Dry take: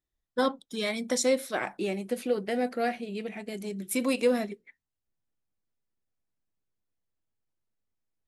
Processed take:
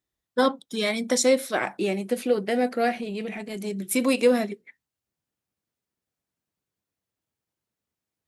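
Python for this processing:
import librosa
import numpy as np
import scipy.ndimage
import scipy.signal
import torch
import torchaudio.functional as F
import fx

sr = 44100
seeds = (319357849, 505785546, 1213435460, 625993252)

y = scipy.signal.sosfilt(scipy.signal.butter(2, 80.0, 'highpass', fs=sr, output='sos'), x)
y = fx.transient(y, sr, attack_db=-9, sustain_db=3, at=(2.95, 3.56), fade=0.02)
y = F.gain(torch.from_numpy(y), 5.0).numpy()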